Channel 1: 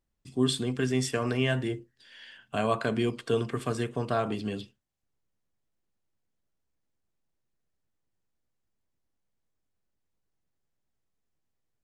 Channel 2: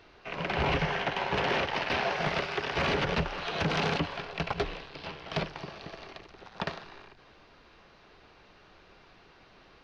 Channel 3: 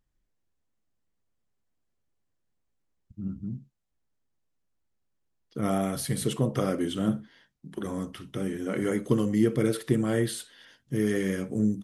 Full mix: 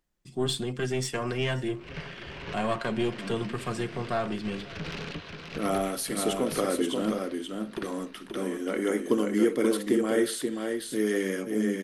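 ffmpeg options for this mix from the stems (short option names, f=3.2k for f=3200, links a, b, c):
-filter_complex "[0:a]aecho=1:1:5.6:0.51,aeval=exprs='(tanh(8.91*val(0)+0.45)-tanh(0.45))/8.91':c=same,volume=0.5dB,asplit=3[a][b][c];[b]volume=-22.5dB[d];[1:a]equalizer=f=790:t=o:w=0.77:g=-11.5,aeval=exprs='(tanh(15.8*val(0)+0.4)-tanh(0.4))/15.8':c=same,adelay=1150,volume=-4.5dB,asplit=2[e][f];[f]volume=-6.5dB[g];[2:a]highpass=f=240:w=0.5412,highpass=f=240:w=1.3066,volume=1.5dB,asplit=2[h][i];[i]volume=-5dB[j];[c]apad=whole_len=484560[k];[e][k]sidechaincompress=threshold=-56dB:ratio=4:attack=11:release=127[l];[d][g][j]amix=inputs=3:normalize=0,aecho=0:1:532:1[m];[a][l][h][m]amix=inputs=4:normalize=0"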